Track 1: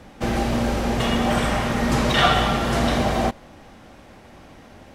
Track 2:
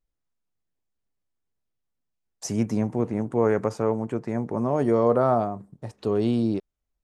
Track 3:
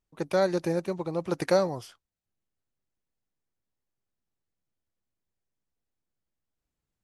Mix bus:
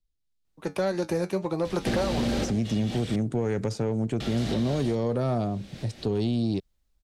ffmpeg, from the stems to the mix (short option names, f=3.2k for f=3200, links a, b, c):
-filter_complex "[0:a]adelay=1650,volume=-4dB,asplit=3[a][b][c];[a]atrim=end=3.16,asetpts=PTS-STARTPTS,afade=t=out:st=3.156:d=0.004:c=hsin[d];[b]atrim=start=3.16:end=4.2,asetpts=PTS-STARTPTS,volume=0[e];[c]atrim=start=4.2,asetpts=PTS-STARTPTS,afade=t=in:d=0.004:c=hsin[f];[d][e][f]concat=n=3:v=0:a=1[g];[1:a]lowshelf=f=160:g=10.5,volume=-6.5dB,asplit=2[h][i];[2:a]flanger=delay=9:depth=2:regen=65:speed=1.8:shape=triangular,adelay=450,volume=2.5dB[j];[i]apad=whole_len=290648[k];[g][k]sidechaincompress=threshold=-41dB:ratio=8:attack=10:release=322[l];[l][h]amix=inputs=2:normalize=0,equalizer=f=1k:t=o:w=1:g=-11,equalizer=f=4k:t=o:w=1:g=10,equalizer=f=8k:t=o:w=1:g=3,acompressor=threshold=-23dB:ratio=6,volume=0dB[m];[j][m]amix=inputs=2:normalize=0,acrossover=split=110|1800[n][o][p];[n]acompressor=threshold=-43dB:ratio=4[q];[o]acompressor=threshold=-31dB:ratio=4[r];[p]acompressor=threshold=-47dB:ratio=4[s];[q][r][s]amix=inputs=3:normalize=0,asoftclip=type=tanh:threshold=-25.5dB,dynaudnorm=f=130:g=9:m=8.5dB"